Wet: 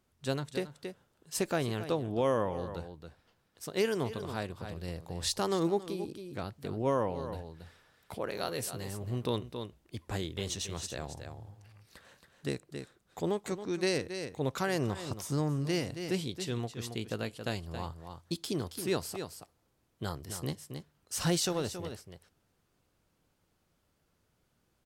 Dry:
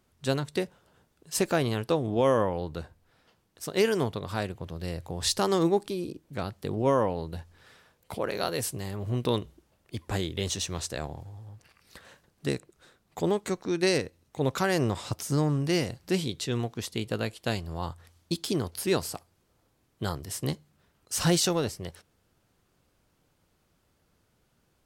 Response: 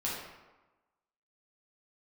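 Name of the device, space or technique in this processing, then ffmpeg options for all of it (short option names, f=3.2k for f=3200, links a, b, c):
ducked delay: -filter_complex "[0:a]asplit=3[a][b][c];[b]adelay=274,volume=-7dB[d];[c]apad=whole_len=1108289[e];[d][e]sidechaincompress=threshold=-33dB:ratio=8:attack=31:release=261[f];[a][f]amix=inputs=2:normalize=0,volume=-5.5dB"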